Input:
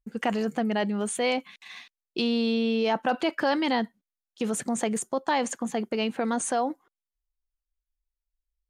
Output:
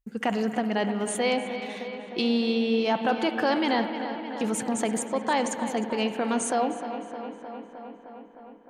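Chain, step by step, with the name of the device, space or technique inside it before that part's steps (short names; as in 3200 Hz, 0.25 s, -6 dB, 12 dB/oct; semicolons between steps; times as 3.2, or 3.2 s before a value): dub delay into a spring reverb (darkening echo 0.308 s, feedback 75%, low-pass 4400 Hz, level -11 dB; spring tank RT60 2.8 s, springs 55 ms, chirp 35 ms, DRR 9 dB)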